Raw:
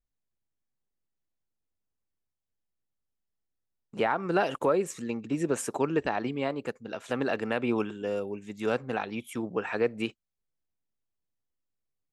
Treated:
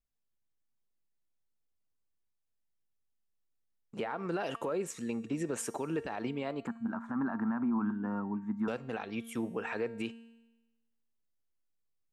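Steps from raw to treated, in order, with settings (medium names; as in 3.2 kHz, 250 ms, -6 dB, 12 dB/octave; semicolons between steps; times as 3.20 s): 6.67–8.68 s: FFT filter 120 Hz 0 dB, 240 Hz +13 dB, 480 Hz -15 dB, 950 Hz +12 dB, 1.6 kHz +4 dB, 2.7 kHz -23 dB; peak limiter -22.5 dBFS, peak gain reduction 11 dB; feedback comb 230 Hz, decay 1.1 s, mix 60%; trim +4.5 dB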